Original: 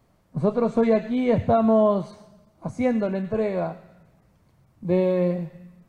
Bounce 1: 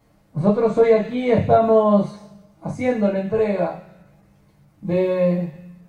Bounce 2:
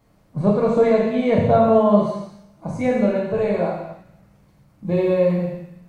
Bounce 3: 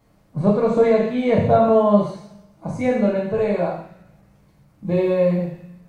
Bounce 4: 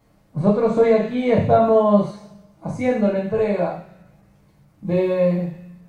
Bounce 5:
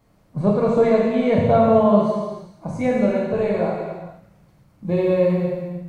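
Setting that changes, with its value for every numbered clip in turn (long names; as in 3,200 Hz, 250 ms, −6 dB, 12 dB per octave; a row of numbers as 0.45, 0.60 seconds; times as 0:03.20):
reverb whose tail is shaped and stops, gate: 90, 320, 210, 140, 520 milliseconds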